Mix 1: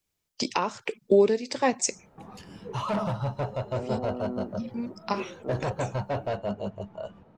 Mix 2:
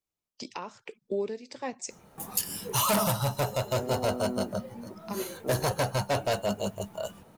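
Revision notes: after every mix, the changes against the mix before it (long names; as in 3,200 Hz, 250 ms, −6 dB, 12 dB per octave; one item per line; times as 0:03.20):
first voice −11.5 dB
background: remove head-to-tape spacing loss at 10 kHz 33 dB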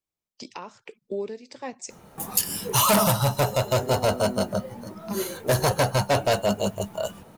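background +6.0 dB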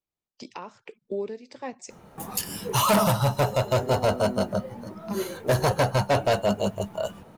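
master: add high-shelf EQ 4,600 Hz −8 dB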